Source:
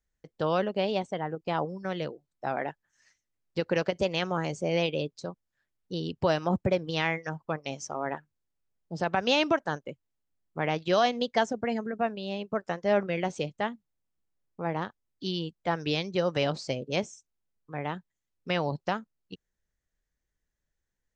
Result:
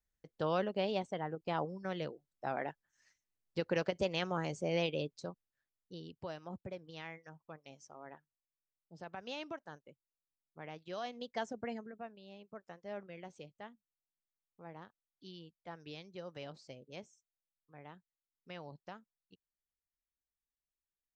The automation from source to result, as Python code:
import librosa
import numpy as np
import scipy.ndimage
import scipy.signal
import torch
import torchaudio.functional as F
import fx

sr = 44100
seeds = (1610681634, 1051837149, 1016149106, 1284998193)

y = fx.gain(x, sr, db=fx.line((5.27, -6.5), (6.32, -19.0), (10.92, -19.0), (11.64, -10.0), (12.09, -19.5)))